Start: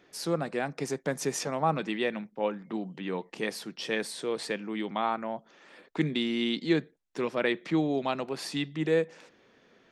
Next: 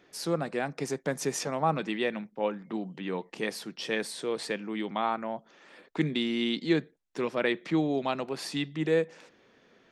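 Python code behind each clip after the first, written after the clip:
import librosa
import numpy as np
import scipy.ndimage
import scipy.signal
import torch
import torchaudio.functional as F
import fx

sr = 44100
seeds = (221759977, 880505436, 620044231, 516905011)

y = x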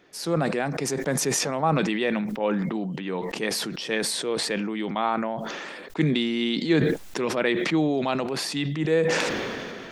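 y = fx.sustainer(x, sr, db_per_s=23.0)
y = y * 10.0 ** (3.0 / 20.0)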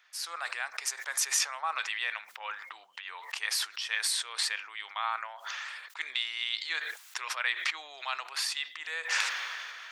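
y = scipy.signal.sosfilt(scipy.signal.butter(4, 1100.0, 'highpass', fs=sr, output='sos'), x)
y = y * 10.0 ** (-1.5 / 20.0)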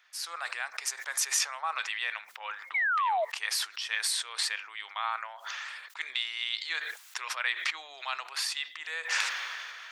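y = fx.spec_paint(x, sr, seeds[0], shape='fall', start_s=2.74, length_s=0.51, low_hz=600.0, high_hz=2300.0, level_db=-27.0)
y = fx.low_shelf(y, sr, hz=200.0, db=-3.5)
y = fx.hum_notches(y, sr, base_hz=60, count=5)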